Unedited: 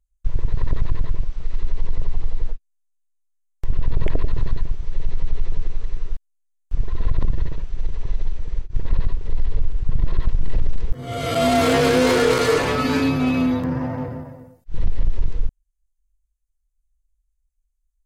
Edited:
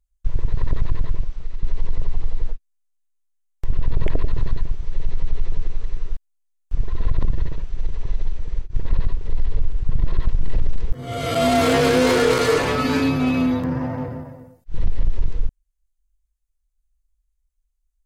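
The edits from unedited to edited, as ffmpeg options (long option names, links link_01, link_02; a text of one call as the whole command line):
ffmpeg -i in.wav -filter_complex "[0:a]asplit=2[link_01][link_02];[link_01]atrim=end=1.63,asetpts=PTS-STARTPTS,afade=type=out:start_time=1.17:duration=0.46:silence=0.446684[link_03];[link_02]atrim=start=1.63,asetpts=PTS-STARTPTS,afade=type=in:duration=0.004:curve=hsin:silence=0.446684[link_04];[link_03][link_04]concat=n=2:v=0:a=1" out.wav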